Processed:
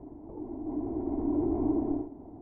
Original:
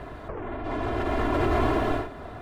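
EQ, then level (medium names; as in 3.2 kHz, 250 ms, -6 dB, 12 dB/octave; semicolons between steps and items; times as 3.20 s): cascade formant filter u; +3.5 dB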